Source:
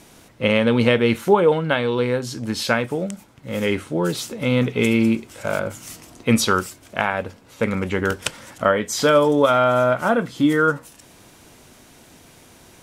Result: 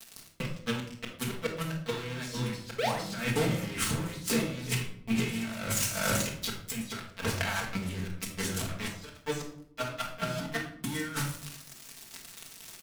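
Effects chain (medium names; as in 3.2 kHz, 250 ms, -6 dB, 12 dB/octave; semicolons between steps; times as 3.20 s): delay 442 ms -8 dB; inverted gate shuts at -7 dBFS, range -35 dB; 2.78–2.99 s: painted sound rise 400–2200 Hz -33 dBFS; waveshaping leveller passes 5; amplifier tone stack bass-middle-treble 5-5-5; bit crusher 9-bit; compressor with a negative ratio -31 dBFS, ratio -0.5; reverberation RT60 0.65 s, pre-delay 4 ms, DRR -2 dB; 7.75–8.69 s: dynamic bell 1.6 kHz, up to -8 dB, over -41 dBFS, Q 0.9; trim -5.5 dB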